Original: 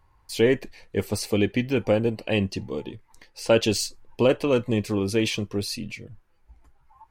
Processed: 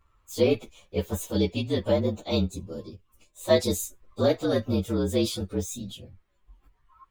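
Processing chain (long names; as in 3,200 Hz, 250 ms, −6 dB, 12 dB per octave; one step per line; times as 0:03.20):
partials spread apart or drawn together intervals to 115%
0:02.51–0:03.41: parametric band 1,400 Hz −8 dB 2.9 octaves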